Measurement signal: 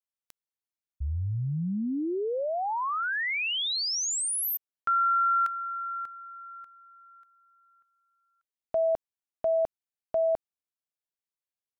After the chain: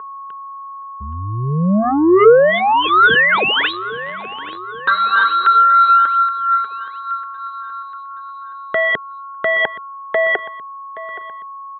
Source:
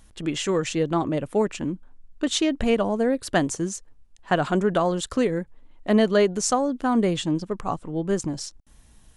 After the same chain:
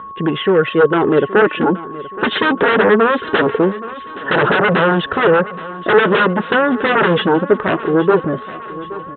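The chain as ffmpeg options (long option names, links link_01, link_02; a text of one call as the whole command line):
ffmpeg -i in.wav -filter_complex "[0:a]dynaudnorm=framelen=270:gausssize=11:maxgain=12dB,aphaser=in_gain=1:out_gain=1:delay=5:decay=0.53:speed=0.22:type=triangular,aresample=8000,aeval=exprs='0.944*sin(PI/2*7.94*val(0)/0.944)':channel_layout=same,aresample=44100,aeval=exprs='val(0)+0.141*sin(2*PI*1100*n/s)':channel_layout=same,highpass=190,equalizer=frequency=280:width_type=q:width=4:gain=-5,equalizer=frequency=430:width_type=q:width=4:gain=8,equalizer=frequency=720:width_type=q:width=4:gain=-6,equalizer=frequency=1100:width_type=q:width=4:gain=-4,equalizer=frequency=1500:width_type=q:width=4:gain=5,equalizer=frequency=2300:width_type=q:width=4:gain=-9,lowpass=frequency=2700:width=0.5412,lowpass=frequency=2700:width=1.3066,asplit=2[link_01][link_02];[link_02]aecho=0:1:823|1646|2469|3292:0.15|0.0733|0.0359|0.0176[link_03];[link_01][link_03]amix=inputs=2:normalize=0,volume=-8dB" out.wav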